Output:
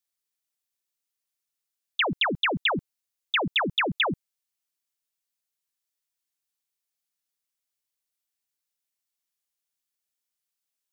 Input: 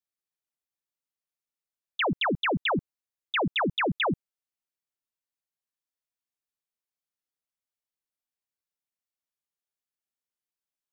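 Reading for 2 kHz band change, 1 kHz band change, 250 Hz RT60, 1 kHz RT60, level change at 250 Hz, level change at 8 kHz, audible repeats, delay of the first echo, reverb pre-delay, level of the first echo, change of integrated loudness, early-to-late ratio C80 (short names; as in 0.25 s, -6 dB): +3.0 dB, 0.0 dB, none, none, -2.0 dB, n/a, none, none, none, none, +2.0 dB, none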